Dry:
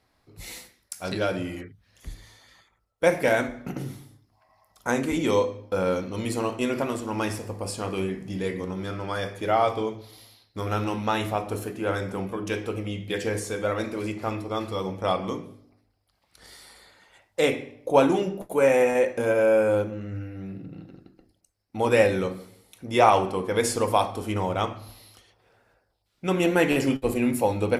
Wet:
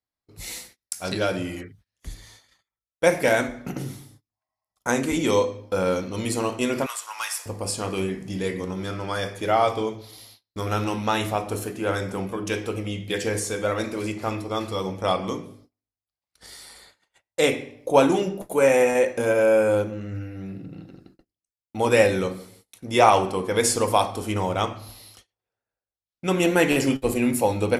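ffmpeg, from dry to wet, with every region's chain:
-filter_complex "[0:a]asettb=1/sr,asplit=3[a][b][c];[a]atrim=end=6.864[d];[b]atrim=start=6.86:end=7.46,asetpts=PTS-STARTPTS,afade=t=in:d=0.004:c=qsin,afade=t=out:st=0.596:d=0.004:c=qsin,highpass=f=980:w=0.5412,highpass=f=980:w=1.3066,highshelf=f=9.9k:g=9.5,asoftclip=type=hard:threshold=-24dB[e];[c]atrim=start=7.456[f];[d][e]acrossfade=d=0.004:c1=hsin:c2=qsin[g];[g][f]acrossfade=d=0.004:c1=qsin:c2=hsin,agate=range=-28dB:threshold=-53dB:ratio=16:detection=peak,equalizer=f=7.7k:w=0.56:g=5.5,volume=1.5dB"

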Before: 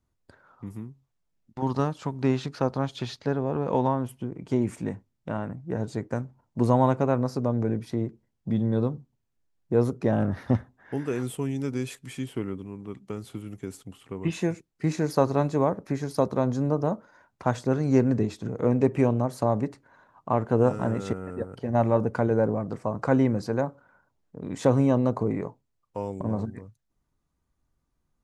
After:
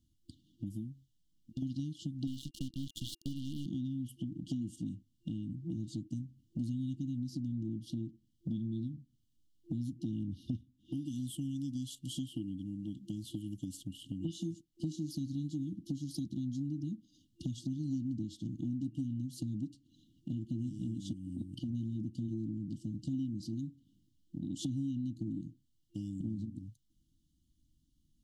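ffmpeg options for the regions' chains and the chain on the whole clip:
-filter_complex "[0:a]asettb=1/sr,asplit=3[a][b][c];[a]atrim=end=2.274[d];[b]atrim=start=2.27:end=3.66,asetpts=PTS-STARTPTS,afade=t=in:d=0.004:c=qsin,afade=t=out:st=1.386:d=0.004:c=qsin,aeval=exprs='if(lt(val(0),0),0.251*val(0),val(0))':c=same,acrusher=bits=5:mix=0:aa=0.5[e];[c]atrim=start=3.656[f];[d][e]acrossfade=d=0.004:c1=hsin:c2=qsin[g];[g][f]acrossfade=d=0.004:c1=qsin:c2=hsin,afftfilt=real='re*(1-between(b*sr/4096,340,2800))':imag='im*(1-between(b*sr/4096,340,2800))':win_size=4096:overlap=0.75,equalizer=f=1.1k:t=o:w=2.3:g=12.5,acompressor=threshold=-40dB:ratio=4,volume=2.5dB"

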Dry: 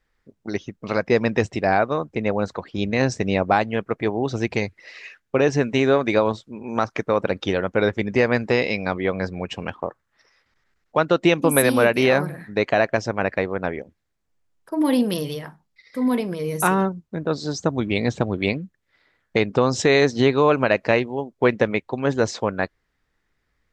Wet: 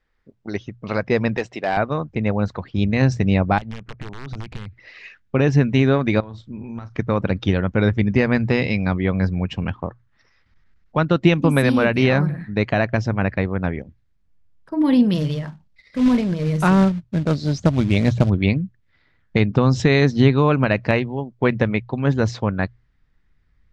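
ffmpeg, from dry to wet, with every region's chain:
-filter_complex "[0:a]asettb=1/sr,asplit=3[a][b][c];[a]atrim=end=1.374[d];[b]atrim=start=1.37:end=1.77,asetpts=PTS-STARTPTS,afade=t=in:d=0.004:c=qsin,afade=t=out:st=0.396:d=0.004:c=qsin,highpass=360,asoftclip=type=hard:threshold=-14dB[e];[c]atrim=start=1.766[f];[d][e]acrossfade=d=0.004:c1=hsin:c2=qsin[g];[g][f]acrossfade=d=0.004:c1=qsin:c2=hsin,asettb=1/sr,asplit=3[h][i][j];[h]atrim=end=3.584[k];[i]atrim=start=3.58:end=5,asetpts=PTS-STARTPTS,afade=t=in:d=0.004:c=qsin,afade=t=out:st=1.416:d=0.004:c=qsin,acompressor=threshold=-32dB:ratio=6:attack=3.2:release=140:knee=1:detection=peak,aeval=exprs='(mod(23.7*val(0)+1,2)-1)/23.7':c=same,highshelf=f=7.7k:g=-11[l];[j]atrim=start=4.996[m];[k][l]acrossfade=d=0.004:c1=hsin:c2=qsin[n];[n][m]acrossfade=d=0.004:c1=qsin:c2=hsin,asettb=1/sr,asplit=3[o][p][q];[o]atrim=end=6.204[r];[p]atrim=start=6.2:end=6.99,asetpts=PTS-STARTPTS,afade=t=in:d=0.004:c=qsin,afade=t=out:st=0.786:d=0.004:c=qsin,asubboost=boost=3.5:cutoff=240,acompressor=threshold=-33dB:ratio=8:attack=3.2:release=140:knee=1:detection=peak,asplit=2[s][t];[t]adelay=34,volume=-12dB[u];[s][u]amix=inputs=2:normalize=0,atrim=end_sample=34839[v];[q]atrim=start=6.986[w];[r][v]acrossfade=d=0.004:c1=hsin:c2=qsin[x];[x][w]acrossfade=d=0.004:c1=qsin:c2=hsin,asettb=1/sr,asplit=3[y][z][aa];[y]atrim=end=15.144[ab];[z]atrim=start=15.14:end=18.3,asetpts=PTS-STARTPTS,afade=t=in:d=0.004:c=qsin,afade=t=out:st=3.156:d=0.004:c=qsin,acrusher=bits=3:mode=log:mix=0:aa=0.000001,equalizer=f=600:t=o:w=0.24:g=8[ac];[aa]atrim=start=18.296[ad];[ab][ac]acrossfade=d=0.004:c1=hsin:c2=qsin[ae];[ae][ad]acrossfade=d=0.004:c1=qsin:c2=hsin,lowpass=4.9k,asubboost=boost=5:cutoff=200,bandreject=f=60:t=h:w=6,bandreject=f=120:t=h:w=6"

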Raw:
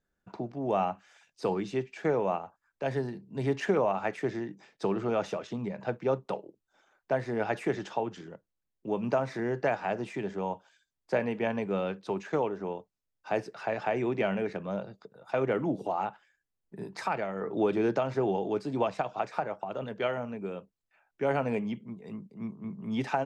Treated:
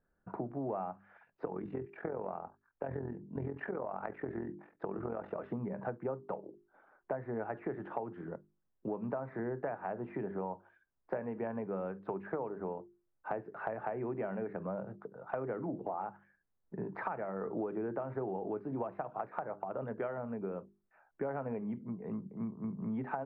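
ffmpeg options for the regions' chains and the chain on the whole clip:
-filter_complex "[0:a]asettb=1/sr,asplit=3[a][b][c];[a]atrim=end=1.454[d];[b]atrim=start=1.45:end=5.39,asetpts=PTS-STARTPTS,afade=t=in:d=0.004:c=qsin,afade=t=out:st=3.936:d=0.004:c=qsin,acompressor=threshold=-28dB:ratio=6:attack=3.2:release=140:knee=1:detection=peak,tremolo=f=43:d=0.75[e];[c]atrim=start=5.386[f];[d][e]acrossfade=d=0.004:c1=hsin:c2=qsin[g];[g][f]acrossfade=d=0.004:c1=qsin:c2=hsin,lowpass=f=1.6k:w=0.5412,lowpass=f=1.6k:w=1.3066,bandreject=f=50:t=h:w=6,bandreject=f=100:t=h:w=6,bandreject=f=150:t=h:w=6,bandreject=f=200:t=h:w=6,bandreject=f=250:t=h:w=6,bandreject=f=300:t=h:w=6,bandreject=f=350:t=h:w=6,bandreject=f=400:t=h:w=6,acompressor=threshold=-39dB:ratio=6,volume=4dB"

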